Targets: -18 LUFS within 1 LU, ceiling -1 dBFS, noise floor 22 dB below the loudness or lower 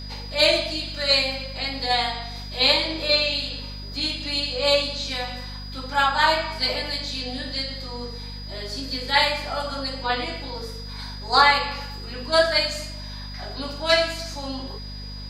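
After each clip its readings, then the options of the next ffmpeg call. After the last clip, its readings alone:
hum 50 Hz; highest harmonic 250 Hz; hum level -34 dBFS; steady tone 4.9 kHz; tone level -39 dBFS; loudness -22.5 LUFS; peak level -4.5 dBFS; loudness target -18.0 LUFS
-> -af "bandreject=f=50:t=h:w=6,bandreject=f=100:t=h:w=6,bandreject=f=150:t=h:w=6,bandreject=f=200:t=h:w=6,bandreject=f=250:t=h:w=6"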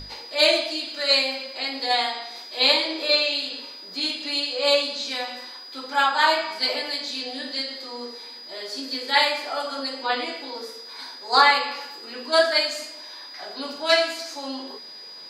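hum not found; steady tone 4.9 kHz; tone level -39 dBFS
-> -af "bandreject=f=4900:w=30"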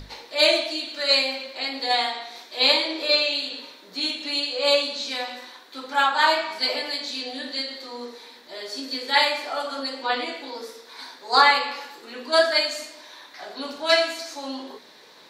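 steady tone not found; loudness -22.5 LUFS; peak level -4.0 dBFS; loudness target -18.0 LUFS
-> -af "volume=1.68,alimiter=limit=0.891:level=0:latency=1"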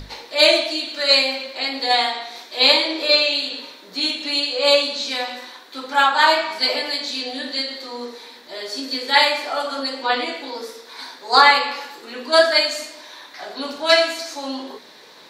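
loudness -18.0 LUFS; peak level -1.0 dBFS; noise floor -44 dBFS

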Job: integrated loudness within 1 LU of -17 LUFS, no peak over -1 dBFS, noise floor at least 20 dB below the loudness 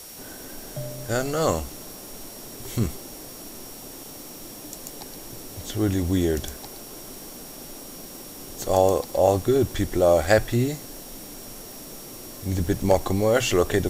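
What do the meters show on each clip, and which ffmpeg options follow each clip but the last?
steady tone 5.6 kHz; tone level -48 dBFS; noise floor -41 dBFS; noise floor target -44 dBFS; loudness -23.5 LUFS; peak level -3.5 dBFS; loudness target -17.0 LUFS
-> -af "bandreject=f=5600:w=30"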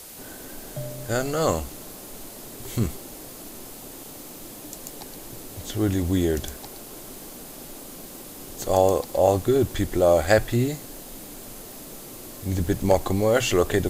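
steady tone not found; noise floor -41 dBFS; noise floor target -44 dBFS
-> -af "afftdn=nr=6:nf=-41"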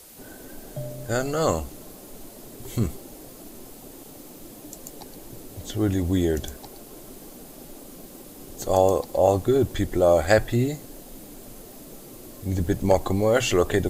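noise floor -44 dBFS; loudness -23.5 LUFS; peak level -3.5 dBFS; loudness target -17.0 LUFS
-> -af "volume=2.11,alimiter=limit=0.891:level=0:latency=1"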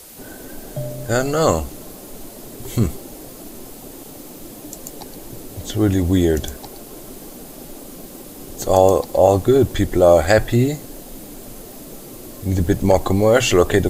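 loudness -17.5 LUFS; peak level -1.0 dBFS; noise floor -38 dBFS

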